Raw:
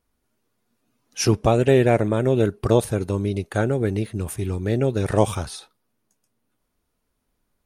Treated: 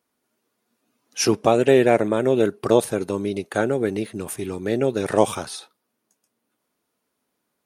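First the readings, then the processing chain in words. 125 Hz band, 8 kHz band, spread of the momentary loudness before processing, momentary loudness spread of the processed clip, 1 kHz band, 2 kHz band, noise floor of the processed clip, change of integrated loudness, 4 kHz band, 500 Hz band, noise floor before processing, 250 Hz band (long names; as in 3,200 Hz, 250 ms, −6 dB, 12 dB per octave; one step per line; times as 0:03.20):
−9.0 dB, +2.0 dB, 11 LU, 14 LU, +2.0 dB, +2.0 dB, −77 dBFS, +0.5 dB, +2.0 dB, +1.5 dB, −75 dBFS, 0.0 dB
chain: high-pass filter 220 Hz 12 dB per octave
level +2 dB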